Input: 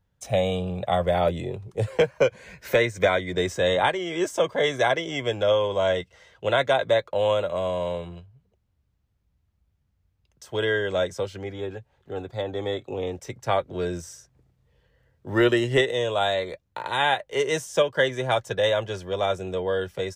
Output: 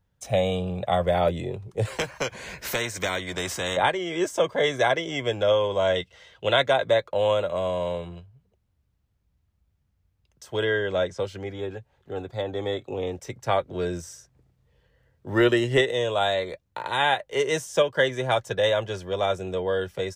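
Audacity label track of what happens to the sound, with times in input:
1.850000	3.770000	spectrum-flattening compressor 2:1
5.950000	6.620000	peaking EQ 3.3 kHz +6.5 dB 0.89 oct
10.630000	11.200000	distance through air 70 m

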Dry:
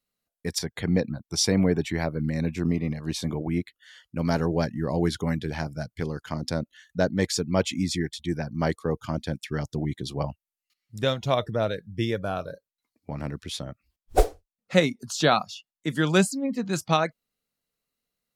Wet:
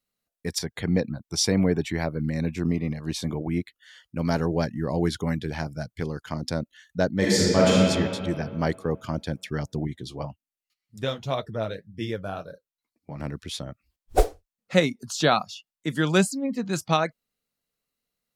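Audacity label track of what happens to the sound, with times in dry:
7.170000	7.760000	reverb throw, RT60 2.3 s, DRR -6 dB
9.870000	13.200000	flange 1.9 Hz, delay 3.6 ms, depth 8.6 ms, regen -43%

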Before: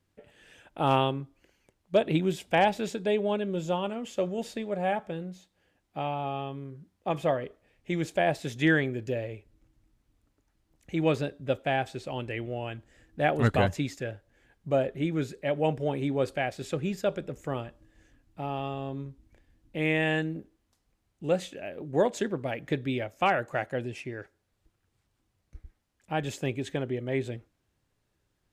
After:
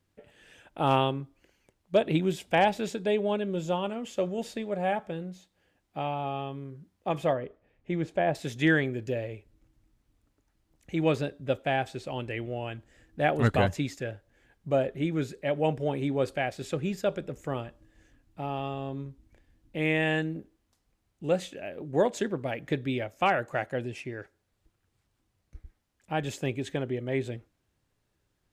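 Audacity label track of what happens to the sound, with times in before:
7.330000	8.350000	low-pass 1.5 kHz 6 dB/octave

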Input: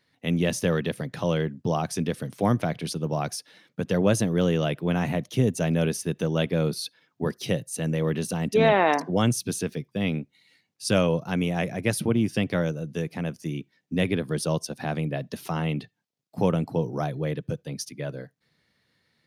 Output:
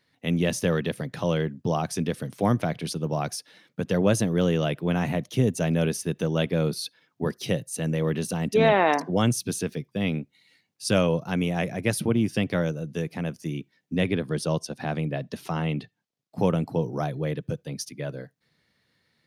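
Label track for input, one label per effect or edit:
13.960000	16.390000	treble shelf 11 kHz -10.5 dB

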